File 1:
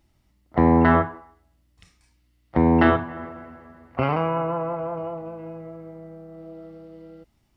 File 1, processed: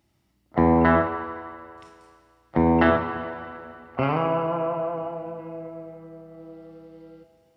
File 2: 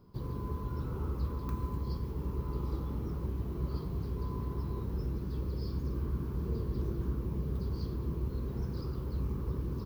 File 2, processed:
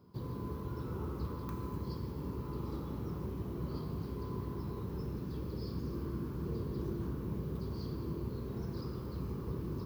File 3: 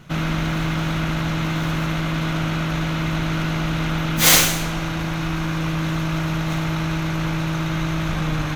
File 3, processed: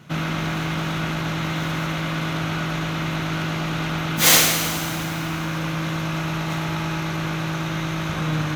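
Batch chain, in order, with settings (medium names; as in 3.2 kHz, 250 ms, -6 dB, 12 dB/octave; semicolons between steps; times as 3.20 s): high-pass 90 Hz 12 dB/octave; Schroeder reverb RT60 2.3 s, combs from 26 ms, DRR 6.5 dB; trim -1 dB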